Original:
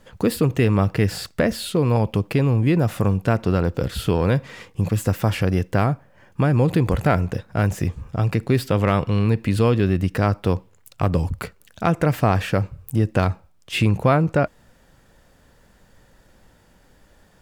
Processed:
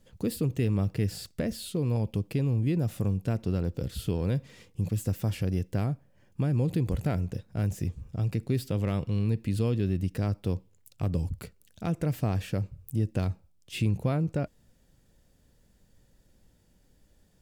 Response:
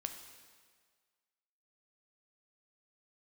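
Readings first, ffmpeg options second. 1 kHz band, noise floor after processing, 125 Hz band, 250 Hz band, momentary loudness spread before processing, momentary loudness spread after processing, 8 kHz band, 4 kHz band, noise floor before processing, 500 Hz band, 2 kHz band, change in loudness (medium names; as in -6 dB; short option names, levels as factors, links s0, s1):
-17.5 dB, -64 dBFS, -7.5 dB, -9.0 dB, 7 LU, 7 LU, -8.0 dB, -11.0 dB, -56 dBFS, -12.5 dB, -16.0 dB, -9.0 dB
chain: -af "equalizer=f=1200:w=0.55:g=-12.5,volume=0.447"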